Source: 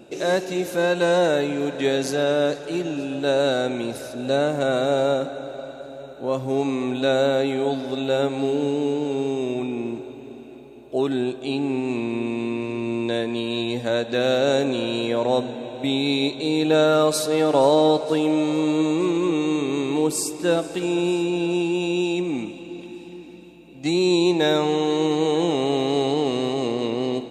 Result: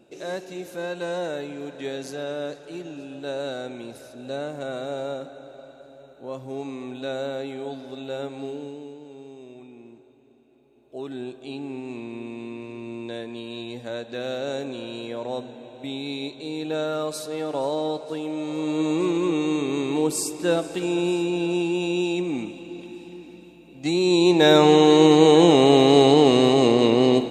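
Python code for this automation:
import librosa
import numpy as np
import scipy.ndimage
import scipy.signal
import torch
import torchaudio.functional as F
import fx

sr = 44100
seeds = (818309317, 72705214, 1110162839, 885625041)

y = fx.gain(x, sr, db=fx.line((8.48, -10.0), (8.98, -18.5), (10.48, -18.5), (11.24, -9.5), (18.33, -9.5), (18.94, -1.5), (24.03, -1.5), (24.67, 7.0)))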